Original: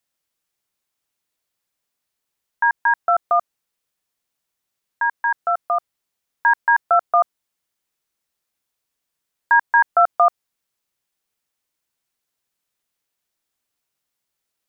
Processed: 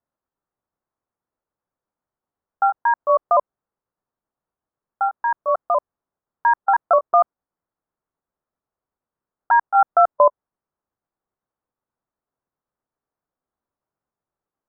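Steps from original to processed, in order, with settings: pitch shift switched off and on -3 st, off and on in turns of 198 ms; low-pass 1.3 kHz 24 dB/octave; trim +2 dB

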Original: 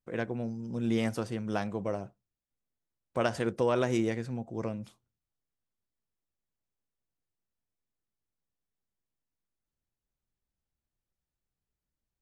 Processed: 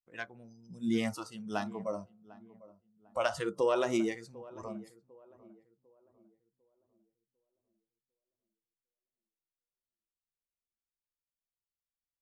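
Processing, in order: de-hum 64.17 Hz, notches 23; spectral noise reduction 19 dB; filtered feedback delay 749 ms, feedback 39%, low-pass 1.1 kHz, level -19 dB

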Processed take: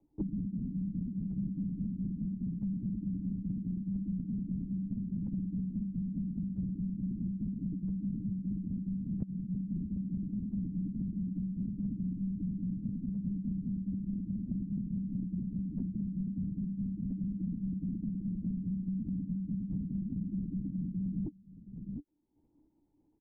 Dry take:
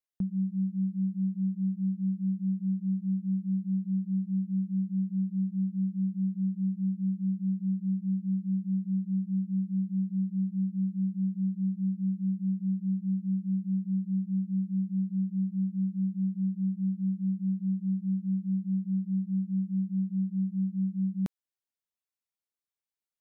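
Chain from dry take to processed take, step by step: dynamic bell 150 Hz, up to +6 dB, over -42 dBFS, Q 1.8; in parallel at +1.5 dB: level held to a coarse grid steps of 12 dB; on the sum: peak limiter -21.5 dBFS, peak gain reduction 8 dB; cascade formant filter u; small resonant body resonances 290 Hz, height 16 dB, ringing for 65 ms; tremolo saw down 0.76 Hz, depth 35%; delay 714 ms -23.5 dB; LPC vocoder at 8 kHz whisper; three bands compressed up and down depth 100%

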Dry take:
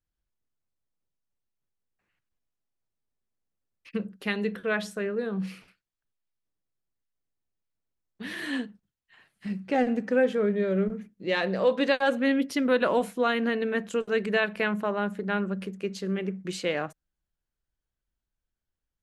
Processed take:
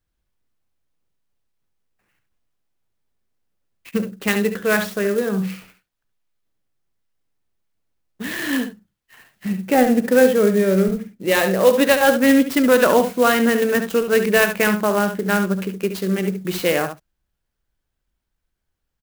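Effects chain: on a send: delay 70 ms -9 dB; on the sum: sampling jitter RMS 0.034 ms; trim +9 dB

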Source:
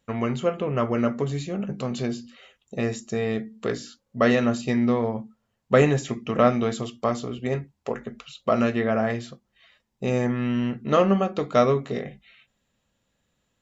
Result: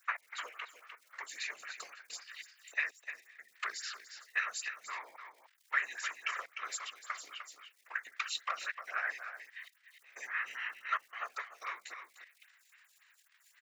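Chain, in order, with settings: peaking EQ 3.3 kHz -9.5 dB 0.35 oct; in parallel at 0 dB: peak limiter -17 dBFS, peak gain reduction 11.5 dB; on the sum: compression 6:1, threshold -28 dBFS, peak gain reduction 16.5 dB; trance gate "x.xx...xxxxx.x" 93 bpm -24 dB; crackle 180 per s -52 dBFS; ladder high-pass 1.5 kHz, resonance 50%; whisper effect; on a send: delay 302 ms -9 dB; on the sum: lamp-driven phase shifter 3.7 Hz; trim +15 dB

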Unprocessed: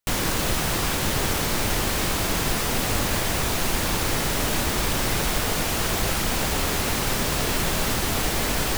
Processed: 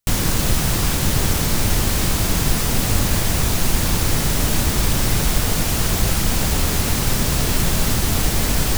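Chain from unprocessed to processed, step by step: tone controls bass +9 dB, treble +5 dB

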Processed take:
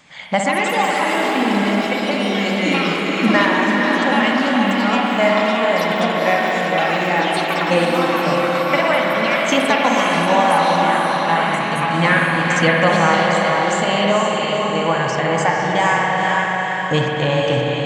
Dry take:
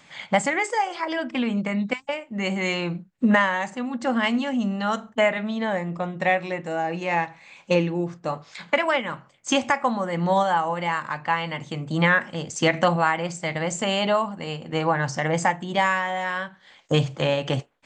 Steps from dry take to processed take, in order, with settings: ever faster or slower copies 235 ms, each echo +5 st, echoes 3, each echo -6 dB; echo that smears into a reverb 488 ms, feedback 45%, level -3 dB; spring tank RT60 3.2 s, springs 55 ms, chirp 20 ms, DRR 0 dB; trim +2 dB

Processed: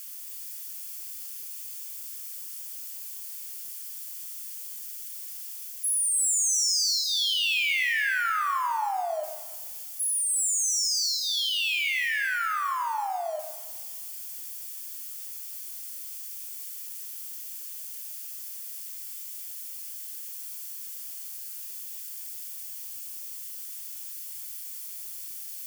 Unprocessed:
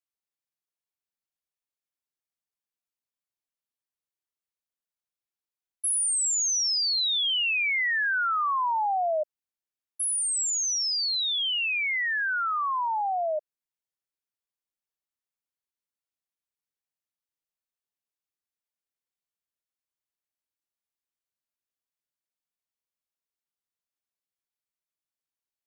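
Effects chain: zero-crossing glitches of -34.5 dBFS; high-pass 680 Hz 12 dB/octave; band-stop 3.9 kHz, Q 9; reverse; upward compressor, threshold -34 dBFS; reverse; feedback echo behind a high-pass 295 ms, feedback 36%, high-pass 2.4 kHz, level -4.5 dB; Schroeder reverb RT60 0.93 s, combs from 27 ms, DRR 6 dB; trim -2 dB

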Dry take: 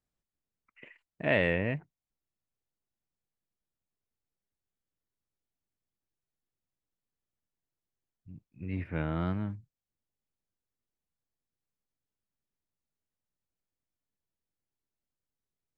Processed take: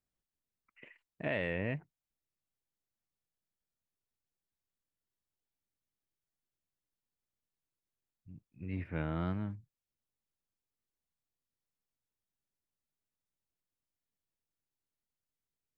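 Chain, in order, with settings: peak limiter -19 dBFS, peak gain reduction 6 dB; trim -3.5 dB

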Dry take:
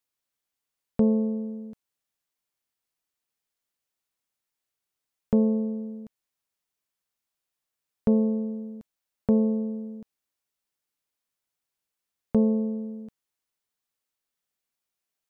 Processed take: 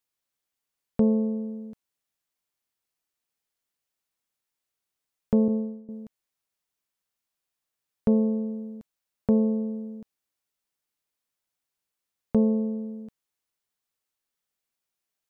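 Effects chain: 5.48–5.89 s: expander -24 dBFS

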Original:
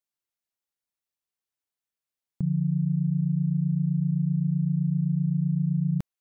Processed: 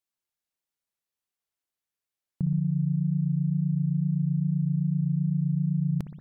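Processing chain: spring tank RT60 1.6 s, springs 60 ms, chirp 45 ms, DRR 8 dB; wow and flutter 27 cents

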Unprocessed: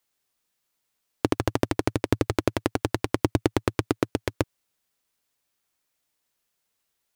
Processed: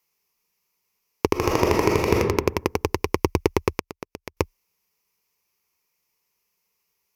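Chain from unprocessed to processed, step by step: rippled EQ curve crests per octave 0.81, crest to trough 11 dB; 1.32–2.14 s: reverb throw, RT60 0.94 s, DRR -3 dB; 3.78–4.37 s: inverted gate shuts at -13 dBFS, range -24 dB; trim +1.5 dB

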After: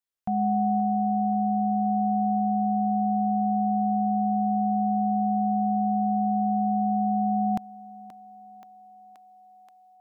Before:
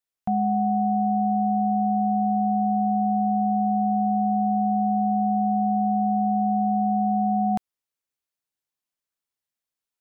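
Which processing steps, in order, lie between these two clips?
level rider gain up to 6 dB; peak limiter -13.5 dBFS, peak gain reduction 3.5 dB; thinning echo 528 ms, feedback 83%, high-pass 420 Hz, level -13 dB; trim -4 dB

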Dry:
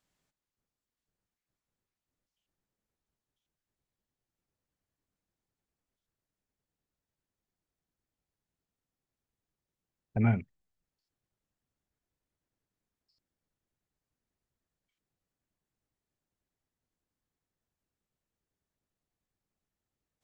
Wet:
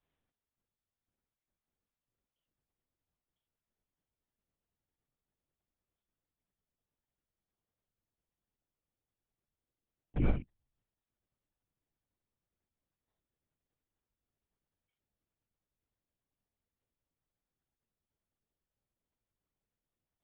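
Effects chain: in parallel at -8.5 dB: sample-rate reducer 2.7 kHz, jitter 0%; on the sum: LPC vocoder at 8 kHz whisper; trim -5 dB

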